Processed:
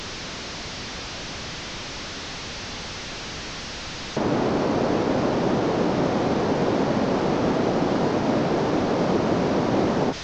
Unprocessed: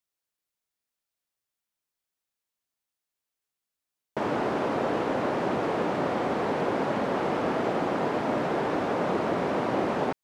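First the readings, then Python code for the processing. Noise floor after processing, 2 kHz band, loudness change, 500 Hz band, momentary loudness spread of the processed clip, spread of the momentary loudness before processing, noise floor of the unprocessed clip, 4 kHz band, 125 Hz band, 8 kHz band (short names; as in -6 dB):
-34 dBFS, +3.5 dB, +3.0 dB, +4.5 dB, 10 LU, 1 LU, under -85 dBFS, +12.0 dB, +9.5 dB, n/a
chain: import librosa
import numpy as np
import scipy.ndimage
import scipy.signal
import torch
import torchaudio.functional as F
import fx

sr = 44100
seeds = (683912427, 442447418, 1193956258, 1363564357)

y = fx.delta_mod(x, sr, bps=32000, step_db=-28.0)
y = fx.low_shelf(y, sr, hz=410.0, db=10.5)
y = fx.end_taper(y, sr, db_per_s=250.0)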